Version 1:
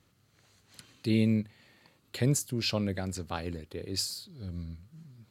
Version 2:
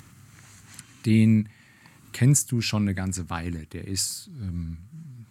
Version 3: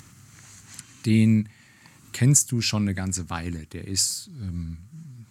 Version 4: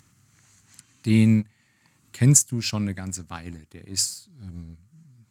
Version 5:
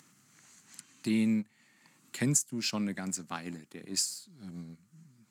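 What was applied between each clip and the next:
graphic EQ 125/250/500/1000/2000/4000/8000 Hz +5/+4/-11/+3/+4/-7/+8 dB; upward compressor, threshold -44 dBFS; gain +4 dB
bell 6200 Hz +6 dB 1 oct
in parallel at -4 dB: crossover distortion -35 dBFS; on the sum: upward expander 1.5:1, over -28 dBFS; gain -1.5 dB
HPF 170 Hz 24 dB/oct; compressor 2:1, threshold -32 dBFS, peak gain reduction 11.5 dB

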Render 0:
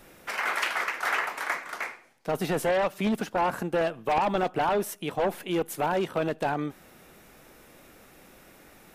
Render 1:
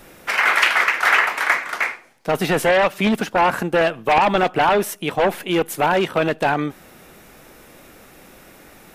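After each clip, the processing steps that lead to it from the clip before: dynamic EQ 2300 Hz, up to +6 dB, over -40 dBFS, Q 0.72; gain +7.5 dB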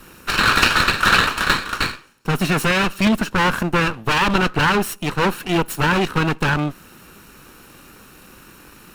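minimum comb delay 0.72 ms; gain +2.5 dB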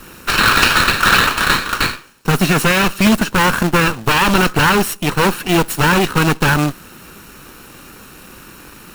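in parallel at +1 dB: limiter -11.5 dBFS, peak gain reduction 10 dB; on the sum: companded quantiser 4-bit; gain -1 dB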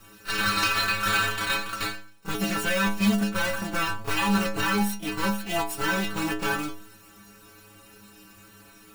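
metallic resonator 100 Hz, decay 0.54 s, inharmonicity 0.008; reverse echo 31 ms -14 dB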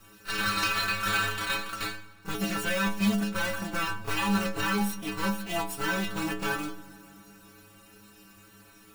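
reverb RT60 2.8 s, pre-delay 5 ms, DRR 16.5 dB; gain -3.5 dB

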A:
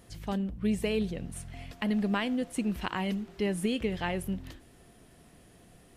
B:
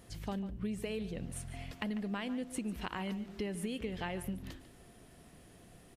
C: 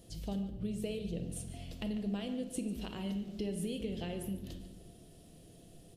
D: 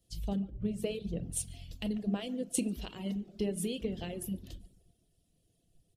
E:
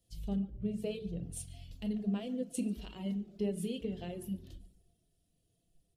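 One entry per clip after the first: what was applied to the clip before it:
compressor 5:1, threshold -34 dBFS, peak gain reduction 9.5 dB; outdoor echo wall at 25 m, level -14 dB; gain -1 dB
band shelf 1400 Hz -12 dB; reverb RT60 1.1 s, pre-delay 6 ms, DRR 6 dB
reverb removal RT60 0.69 s; three-band expander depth 100%; gain +3.5 dB
de-hum 54.37 Hz, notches 8; harmonic-percussive split percussive -10 dB

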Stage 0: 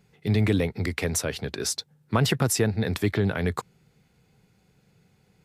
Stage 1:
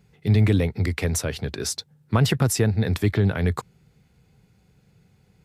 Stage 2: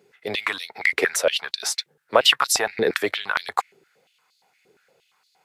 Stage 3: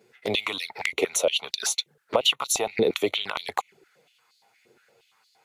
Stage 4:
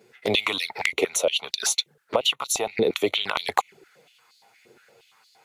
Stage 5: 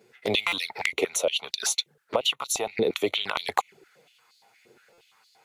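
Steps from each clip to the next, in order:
bell 60 Hz +8 dB 2.5 oct
dynamic EQ 1900 Hz, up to +5 dB, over -43 dBFS, Q 0.77; stepped high-pass 8.6 Hz 390–4200 Hz; gain +1.5 dB
compressor 4:1, threshold -21 dBFS, peak gain reduction 9.5 dB; envelope flanger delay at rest 9.3 ms, full sweep at -26 dBFS; gain +4 dB
vocal rider 0.5 s; gain +1.5 dB
stuck buffer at 0.47/4.93, samples 256, times 8; gain -2.5 dB

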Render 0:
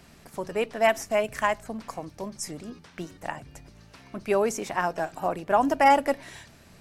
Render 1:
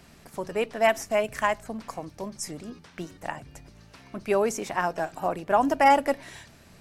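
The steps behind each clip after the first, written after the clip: nothing audible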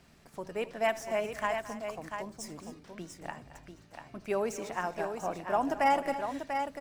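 median filter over 3 samples; on a send: tapped delay 77/219/263/692 ms -19/-17/-15.5/-7 dB; on the sum: gain -7.5 dB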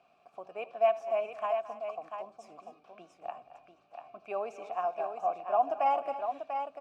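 vowel filter a; gain +8 dB

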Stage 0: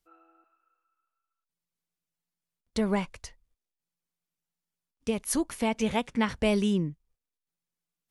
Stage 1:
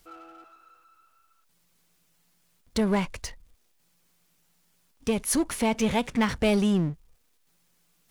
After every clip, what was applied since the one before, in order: power-law curve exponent 0.7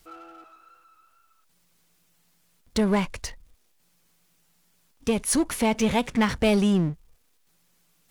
wow and flutter 25 cents; gain +2 dB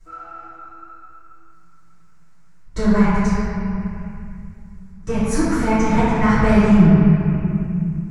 EQ curve 160 Hz 0 dB, 250 Hz -10 dB, 550 Hz -10 dB, 1400 Hz -1 dB, 3300 Hz -18 dB, 7300 Hz -8 dB, 12000 Hz -23 dB; reverb RT60 2.6 s, pre-delay 3 ms, DRR -16.5 dB; gain -4.5 dB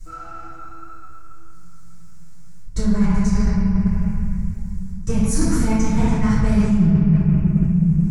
tone controls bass +13 dB, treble +14 dB; reverse; compressor 6:1, threshold -13 dBFS, peak gain reduction 15 dB; reverse

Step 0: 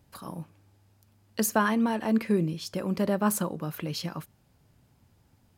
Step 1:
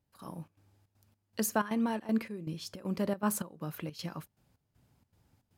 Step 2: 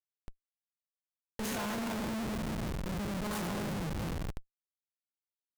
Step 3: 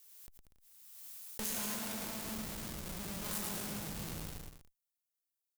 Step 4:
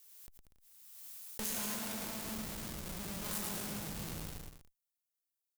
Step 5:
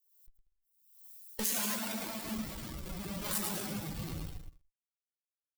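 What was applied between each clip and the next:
step gate "..xxx.xxx.xx" 158 bpm -12 dB; gain -5 dB
spectral trails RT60 1.15 s; multi-head echo 0.125 s, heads second and third, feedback 43%, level -8.5 dB; Schmitt trigger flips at -29.5 dBFS; gain -3 dB
pre-emphasis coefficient 0.8; on a send: bouncing-ball echo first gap 0.11 s, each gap 0.7×, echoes 5; on the sum: backwards sustainer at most 33 dB/s; gain +2.5 dB
nothing audible
per-bin expansion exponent 2; gain +8.5 dB

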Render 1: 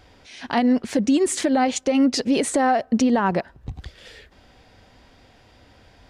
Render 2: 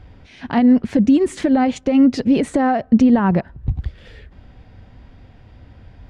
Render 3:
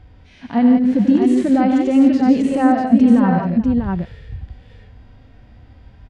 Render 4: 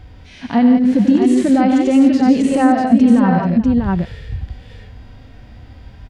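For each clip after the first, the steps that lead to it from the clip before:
tone controls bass +13 dB, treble -12 dB
on a send: tapped delay 91/147/170/434/643 ms -11/-9.5/-8/-17/-4.5 dB; on the sum: harmonic-percussive split percussive -13 dB
in parallel at +3 dB: compressor, threshold -20 dBFS, peak gain reduction 13 dB; on the sum: high shelf 3800 Hz +7 dB; gain -2 dB

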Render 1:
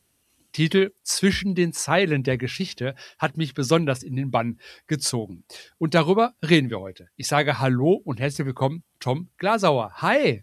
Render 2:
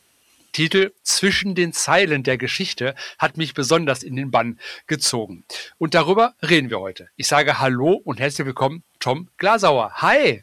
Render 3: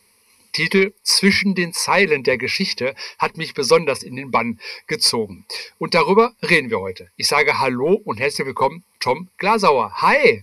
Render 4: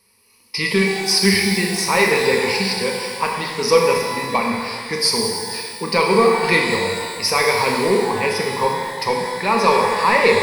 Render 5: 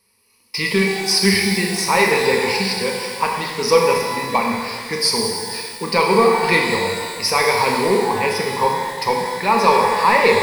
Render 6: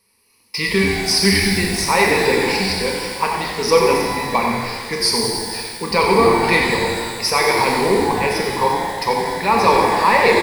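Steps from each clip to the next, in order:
in parallel at -2 dB: compressor, threshold -28 dBFS, peak gain reduction 16.5 dB; on the sum: overdrive pedal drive 13 dB, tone 5500 Hz, clips at -0.5 dBFS; gain -1 dB
ripple EQ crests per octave 0.88, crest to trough 16 dB; gain -1.5 dB
notch 2100 Hz, Q 22; shimmer reverb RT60 1.8 s, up +12 st, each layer -8 dB, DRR 0 dB; gain -3 dB
dynamic EQ 860 Hz, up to +4 dB, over -30 dBFS, Q 3.8; in parallel at -6.5 dB: bit-crush 5-bit; on the sum: gain -3.5 dB
frequency-shifting echo 90 ms, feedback 44%, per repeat -110 Hz, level -8.5 dB

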